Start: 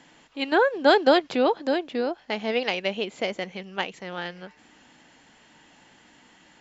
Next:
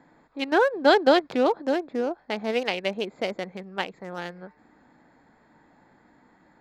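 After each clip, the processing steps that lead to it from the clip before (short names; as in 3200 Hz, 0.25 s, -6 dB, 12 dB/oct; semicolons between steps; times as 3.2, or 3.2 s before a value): Wiener smoothing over 15 samples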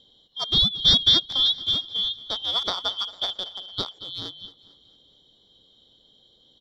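four-band scrambler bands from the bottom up 2413; feedback echo 0.225 s, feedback 48%, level -18 dB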